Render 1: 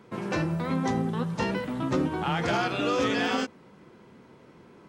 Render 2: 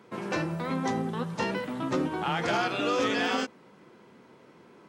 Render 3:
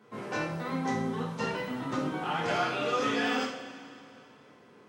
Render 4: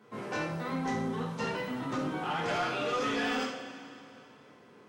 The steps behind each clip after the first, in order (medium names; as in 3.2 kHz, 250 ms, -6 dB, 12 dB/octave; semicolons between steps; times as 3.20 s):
high-pass 230 Hz 6 dB/octave
two-slope reverb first 0.49 s, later 2.8 s, from -15 dB, DRR -5 dB; trim -8 dB
saturation -24.5 dBFS, distortion -17 dB